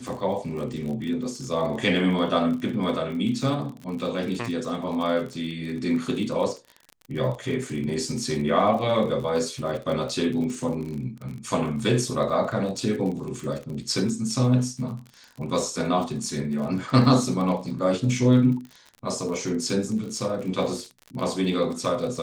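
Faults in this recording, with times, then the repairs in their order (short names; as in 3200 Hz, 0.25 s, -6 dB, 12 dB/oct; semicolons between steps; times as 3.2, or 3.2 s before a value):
crackle 41/s -32 dBFS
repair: de-click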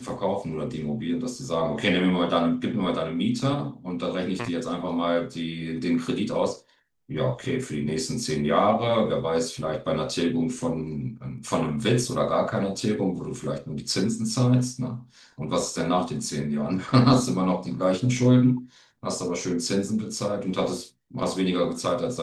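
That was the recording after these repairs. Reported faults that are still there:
none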